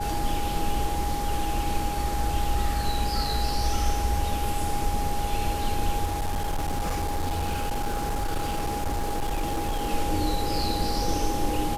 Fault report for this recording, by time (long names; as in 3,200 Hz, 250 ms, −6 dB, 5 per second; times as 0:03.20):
whistle 820 Hz −30 dBFS
0:06.05–0:09.92: clipping −23 dBFS